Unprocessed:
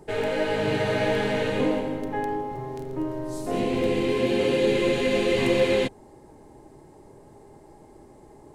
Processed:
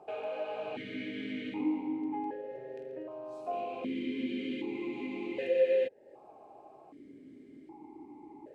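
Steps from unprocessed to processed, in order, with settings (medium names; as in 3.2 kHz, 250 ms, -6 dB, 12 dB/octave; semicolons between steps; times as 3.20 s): compression 2:1, threshold -40 dBFS, peak gain reduction 12.5 dB; stepped vowel filter 1.3 Hz; trim +9 dB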